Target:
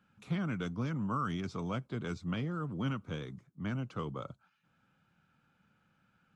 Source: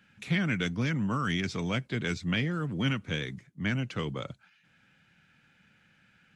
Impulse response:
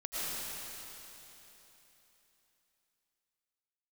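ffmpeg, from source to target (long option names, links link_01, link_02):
-af "highshelf=frequency=1500:width_type=q:width=3:gain=-6,volume=-5.5dB"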